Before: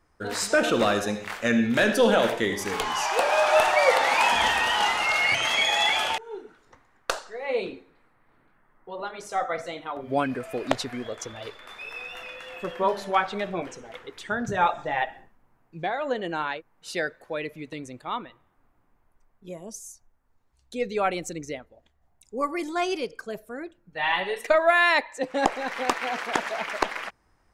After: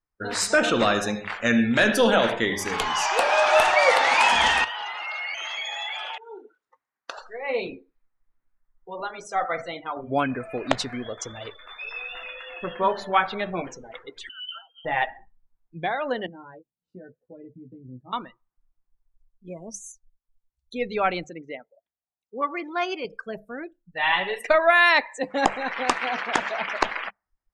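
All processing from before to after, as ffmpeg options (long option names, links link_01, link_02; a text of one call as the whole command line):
ffmpeg -i in.wav -filter_complex "[0:a]asettb=1/sr,asplit=3[link_01][link_02][link_03];[link_01]atrim=end=4.644[link_04];[link_02]atrim=start=4.64:end=7.18,asetpts=PTS-STARTPTS,afade=type=in:duration=0.004:curve=qsin,afade=type=out:start_time=2.536:duration=0.004:curve=qsin,highpass=frequency=360:poles=1,acompressor=threshold=-35dB:ratio=3:attack=3.2:release=140:knee=1:detection=peak[link_05];[link_03]atrim=start=7.176[link_06];[link_04][link_05]acrossfade=duration=0.004:curve1=hsin:curve2=qsin[link_07];[link_07][link_06]acrossfade=duration=0.004:curve1=qsin:curve2=hsin,asettb=1/sr,asplit=3[link_08][link_09][link_10];[link_08]atrim=end=14.294[link_11];[link_09]atrim=start=14.29:end=14.85,asetpts=PTS-STARTPTS,afade=type=in:duration=0.004:curve=qsin,afade=type=out:start_time=0.556:duration=0.004:curve=qsin,lowpass=frequency=2700:width_type=q:width=0.5098,lowpass=frequency=2700:width_type=q:width=0.6013,lowpass=frequency=2700:width_type=q:width=0.9,lowpass=frequency=2700:width_type=q:width=2.563,afreqshift=-3200,acompressor=threshold=-32dB:ratio=6:attack=3.2:release=140:knee=1:detection=peak,asuperstop=centerf=2100:order=12:qfactor=1.4[link_12];[link_10]atrim=start=14.846[link_13];[link_11][link_12]acrossfade=duration=0.004:curve1=hsin:curve2=qsin[link_14];[link_14][link_13]acrossfade=duration=0.004:curve1=qsin:curve2=hsin,asettb=1/sr,asplit=3[link_15][link_16][link_17];[link_15]atrim=end=16.264[link_18];[link_16]atrim=start=16.26:end=18.13,asetpts=PTS-STARTPTS,afade=type=in:duration=0.004:curve=qsin,afade=type=out:start_time=1.866:duration=0.004:curve=qsin,bandpass=frequency=150:width_type=q:width=1,acompressor=threshold=-40dB:ratio=10:attack=3.2:release=140:knee=1:detection=peak,asplit=2[link_19][link_20];[link_20]adelay=16,volume=-3dB[link_21];[link_19][link_21]amix=inputs=2:normalize=0,atrim=end_sample=82467[link_22];[link_17]atrim=start=18.126[link_23];[link_18][link_22]acrossfade=duration=0.004:curve1=hsin:curve2=qsin[link_24];[link_24][link_23]acrossfade=duration=0.004:curve1=qsin:curve2=hsin,asettb=1/sr,asplit=3[link_25][link_26][link_27];[link_25]atrim=end=21.244[link_28];[link_26]atrim=start=21.24:end=23.05,asetpts=PTS-STARTPTS,afade=type=in:duration=0.004:curve=qsin,afade=type=out:start_time=1.806:duration=0.004:curve=qsin,highpass=frequency=380:poles=1,highshelf=frequency=9600:gain=-12,adynamicsmooth=sensitivity=5.5:basefreq=3300[link_29];[link_27]atrim=start=23.046[link_30];[link_28][link_29]acrossfade=duration=0.004:curve1=hsin:curve2=qsin[link_31];[link_31][link_30]acrossfade=duration=0.004:curve1=qsin:curve2=hsin,bandreject=frequency=50:width_type=h:width=6,bandreject=frequency=100:width_type=h:width=6,bandreject=frequency=150:width_type=h:width=6,bandreject=frequency=200:width_type=h:width=6,afftdn=noise_reduction=27:noise_floor=-44,equalizer=frequency=430:width_type=o:width=1.6:gain=-4,volume=3.5dB" out.wav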